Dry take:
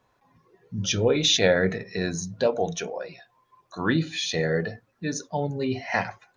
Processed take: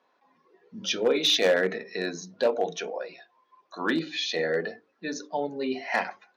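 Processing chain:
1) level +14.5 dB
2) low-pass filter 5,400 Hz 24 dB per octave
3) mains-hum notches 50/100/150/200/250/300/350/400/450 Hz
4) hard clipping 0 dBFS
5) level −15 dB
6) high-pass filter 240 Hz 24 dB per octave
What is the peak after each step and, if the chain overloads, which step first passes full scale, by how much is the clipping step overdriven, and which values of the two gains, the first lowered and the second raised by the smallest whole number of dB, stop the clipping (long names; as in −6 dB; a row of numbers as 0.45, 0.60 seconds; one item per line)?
+8.0, +8.0, +7.5, 0.0, −15.0, −9.5 dBFS
step 1, 7.5 dB
step 1 +6.5 dB, step 5 −7 dB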